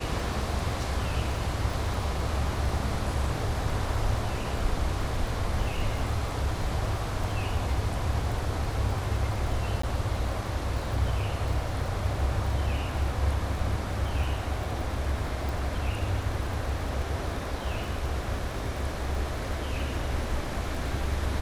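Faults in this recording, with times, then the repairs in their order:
crackle 45 per s -35 dBFS
9.82–9.83 s: dropout 14 ms
15.49 s: pop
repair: de-click; interpolate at 9.82 s, 14 ms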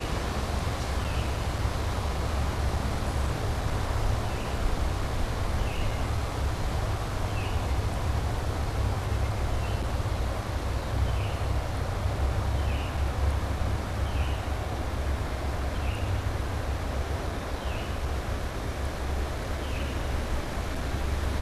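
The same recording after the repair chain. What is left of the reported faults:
15.49 s: pop

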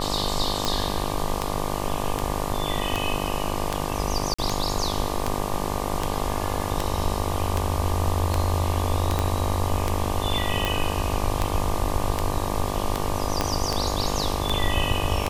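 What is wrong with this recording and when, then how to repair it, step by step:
buzz 50 Hz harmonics 24 -29 dBFS
tick 78 rpm
4.34–4.38 s: dropout 45 ms
9.19 s: pop -9 dBFS
13.41 s: pop -7 dBFS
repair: de-click; de-hum 50 Hz, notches 24; interpolate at 4.34 s, 45 ms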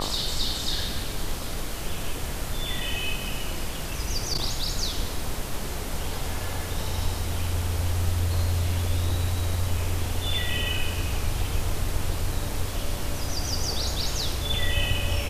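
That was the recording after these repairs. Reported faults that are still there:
9.19 s: pop
13.41 s: pop

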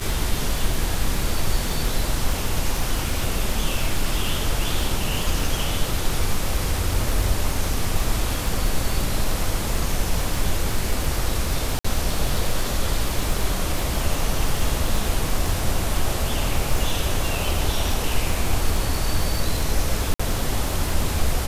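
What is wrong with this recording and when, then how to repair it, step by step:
crackle 41 per s -24 dBFS
11.79–11.85 s: dropout 55 ms
20.14–20.20 s: dropout 55 ms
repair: de-click; interpolate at 11.79 s, 55 ms; interpolate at 20.14 s, 55 ms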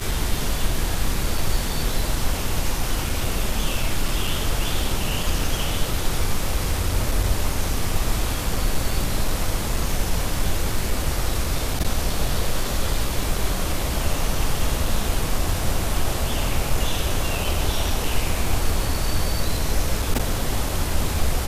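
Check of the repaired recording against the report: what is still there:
nothing left

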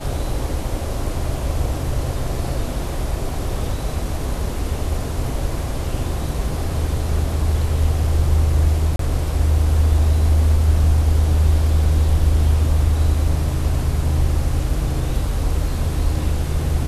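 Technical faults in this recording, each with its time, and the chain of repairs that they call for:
8.96–8.99 s: dropout 33 ms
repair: interpolate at 8.96 s, 33 ms

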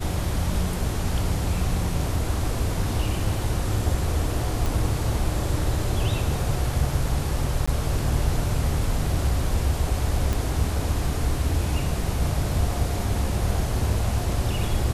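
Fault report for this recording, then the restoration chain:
4.66 s: pop
7.66–7.67 s: dropout 15 ms
10.33 s: pop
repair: de-click; interpolate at 7.66 s, 15 ms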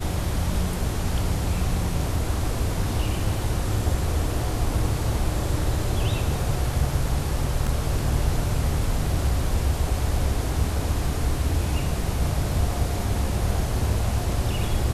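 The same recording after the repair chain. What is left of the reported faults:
nothing left

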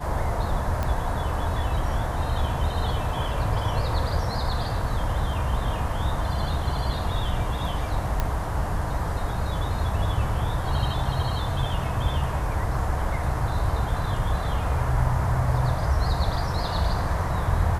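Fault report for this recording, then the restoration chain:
0.83 s: pop -15 dBFS
8.20 s: pop -11 dBFS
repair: de-click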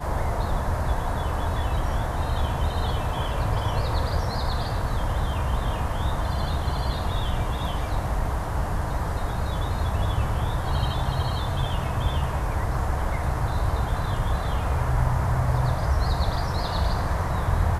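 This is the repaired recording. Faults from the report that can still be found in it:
nothing left

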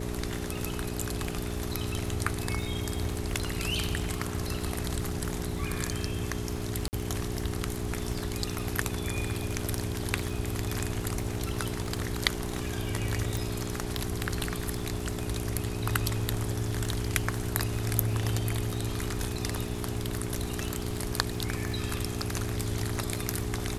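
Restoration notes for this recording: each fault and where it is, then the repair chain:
crackle 45 per s -37 dBFS
hum 60 Hz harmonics 7 -36 dBFS
6.88–6.93 s: dropout 49 ms
13.37 s: pop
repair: de-click; de-hum 60 Hz, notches 7; interpolate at 6.88 s, 49 ms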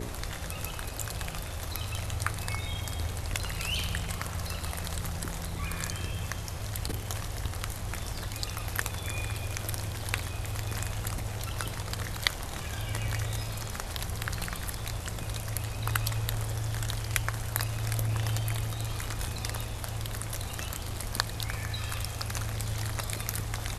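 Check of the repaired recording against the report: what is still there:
nothing left

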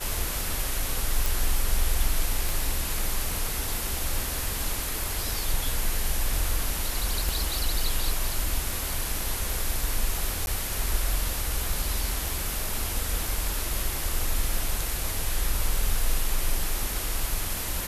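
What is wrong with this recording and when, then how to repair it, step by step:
1.26 s: pop
2.49 s: pop
7.29 s: pop
10.46–10.47 s: dropout 11 ms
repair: de-click; interpolate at 10.46 s, 11 ms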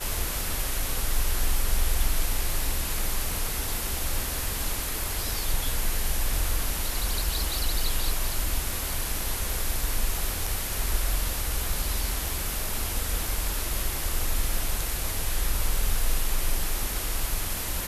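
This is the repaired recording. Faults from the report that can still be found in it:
7.29 s: pop

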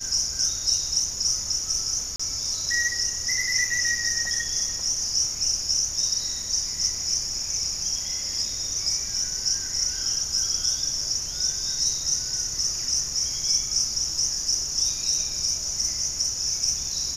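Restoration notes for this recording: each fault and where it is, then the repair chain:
2.16–2.19 s: dropout 35 ms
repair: interpolate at 2.16 s, 35 ms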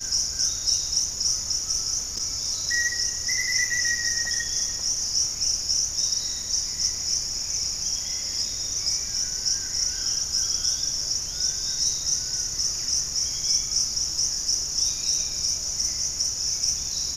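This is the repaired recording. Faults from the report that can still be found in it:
nothing left

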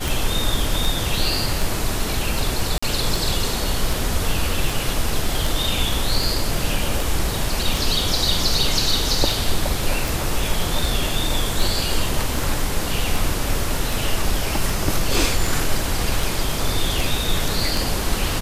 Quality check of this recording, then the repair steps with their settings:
tick 78 rpm
2.78–2.83 s: dropout 45 ms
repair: de-click; interpolate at 2.78 s, 45 ms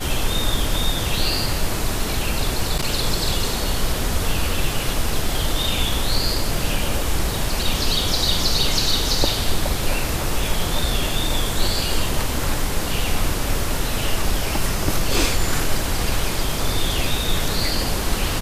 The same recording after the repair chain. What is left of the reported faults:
nothing left

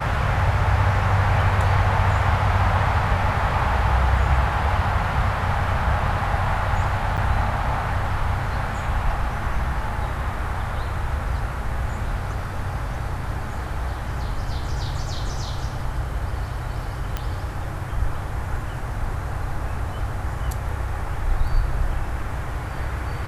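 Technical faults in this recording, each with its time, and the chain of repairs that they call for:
7.17–7.18 s: dropout 7.7 ms
17.17 s: pop -12 dBFS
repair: de-click; interpolate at 7.17 s, 7.7 ms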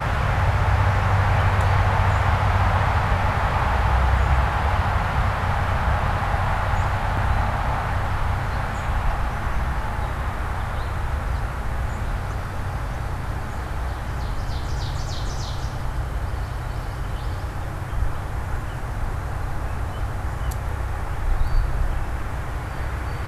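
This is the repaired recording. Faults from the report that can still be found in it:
nothing left

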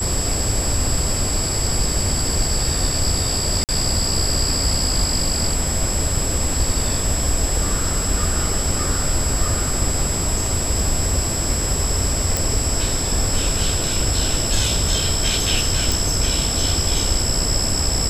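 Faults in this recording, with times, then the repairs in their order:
whine 7.7 kHz -24 dBFS
3.64–3.69 s: dropout 48 ms
12.37 s: pop
15.92 s: pop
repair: de-click; band-stop 7.7 kHz, Q 30; interpolate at 3.64 s, 48 ms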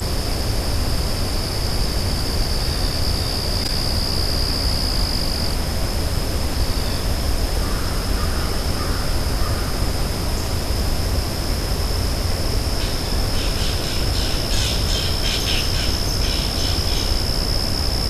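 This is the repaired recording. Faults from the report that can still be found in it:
nothing left

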